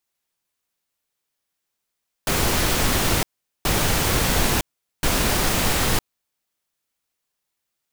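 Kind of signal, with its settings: noise bursts pink, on 0.96 s, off 0.42 s, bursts 3, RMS -20 dBFS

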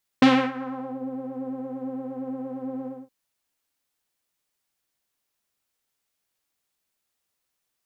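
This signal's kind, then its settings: synth patch with pulse-width modulation C4, oscillator 2 saw, sub -20 dB, filter lowpass, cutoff 490 Hz, Q 1.3, filter envelope 3 oct, filter decay 0.79 s, filter sustain 5%, attack 3.5 ms, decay 0.29 s, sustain -18.5 dB, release 0.22 s, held 2.65 s, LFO 8.7 Hz, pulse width 30%, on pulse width 20%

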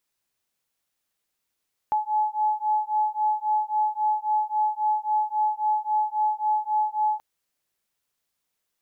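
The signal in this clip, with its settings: beating tones 852 Hz, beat 3.7 Hz, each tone -24.5 dBFS 5.28 s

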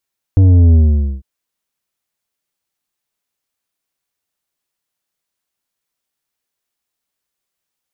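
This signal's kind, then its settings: sub drop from 97 Hz, over 0.85 s, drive 8.5 dB, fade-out 0.48 s, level -6 dB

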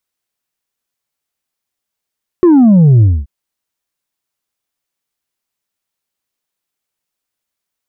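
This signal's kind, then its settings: sub drop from 370 Hz, over 0.83 s, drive 3 dB, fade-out 0.24 s, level -4 dB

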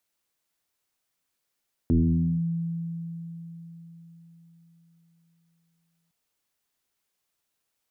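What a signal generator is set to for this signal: FM tone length 4.21 s, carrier 167 Hz, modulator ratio 0.49, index 1.8, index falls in 0.53 s linear, decay 4.40 s, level -16.5 dB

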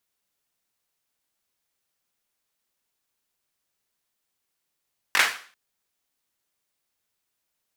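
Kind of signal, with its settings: hand clap length 0.39 s, bursts 3, apart 21 ms, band 1.7 kHz, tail 0.43 s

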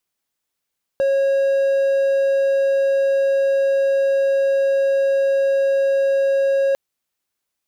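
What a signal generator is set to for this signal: tone triangle 547 Hz -12.5 dBFS 5.75 s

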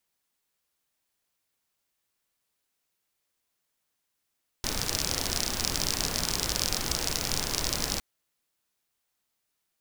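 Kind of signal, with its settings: rain from filtered ticks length 3.36 s, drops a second 48, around 5.2 kHz, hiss 0 dB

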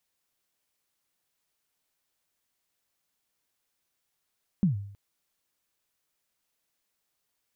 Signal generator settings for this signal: kick drum length 0.32 s, from 210 Hz, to 100 Hz, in 127 ms, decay 0.64 s, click off, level -17 dB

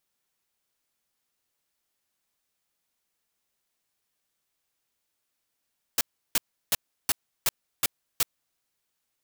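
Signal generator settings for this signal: noise bursts white, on 0.03 s, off 0.34 s, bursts 7, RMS -22.5 dBFS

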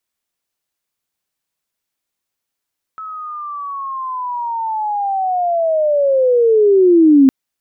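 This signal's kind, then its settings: sweep linear 1.3 kHz -> 260 Hz -26 dBFS -> -4.5 dBFS 4.31 s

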